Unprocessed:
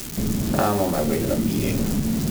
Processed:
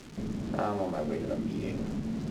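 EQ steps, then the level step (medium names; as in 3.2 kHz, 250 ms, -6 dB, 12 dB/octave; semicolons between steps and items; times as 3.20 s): tape spacing loss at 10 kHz 21 dB; bass shelf 150 Hz -7.5 dB; -7.5 dB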